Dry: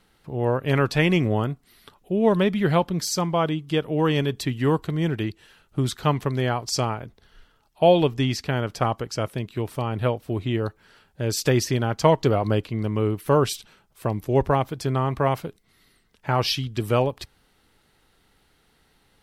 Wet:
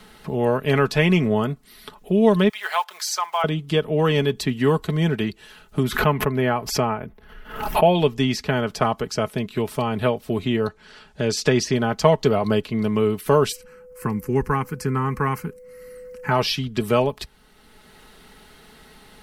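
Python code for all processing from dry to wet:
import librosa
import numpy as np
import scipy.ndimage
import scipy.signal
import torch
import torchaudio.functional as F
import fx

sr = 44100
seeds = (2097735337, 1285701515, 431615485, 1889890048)

y = fx.chain(x, sr, fx.block_float(bits=7),
    fx.highpass(hz=830.0, slope=24), at=(2.49, 3.44))
y = fx.chain(y, sr, fx.band_shelf(hz=5700.0, db=-11.0, octaves=1.7),
    fx.pre_swell(db_per_s=97.0), at=(5.83, 7.95))
y = fx.chain(y, sr, fx.lowpass(hz=6300.0, slope=12),
    fx.high_shelf(hz=4700.0, db=5.5), at=(10.67, 11.75))
y = fx.dmg_tone(y, sr, hz=500.0, level_db=-36.0, at=(13.51, 16.3), fade=0.02)
y = fx.fixed_phaser(y, sr, hz=1500.0, stages=4, at=(13.51, 16.3), fade=0.02)
y = y + 0.51 * np.pad(y, (int(4.7 * sr / 1000.0), 0))[:len(y)]
y = fx.band_squash(y, sr, depth_pct=40)
y = y * librosa.db_to_amplitude(2.0)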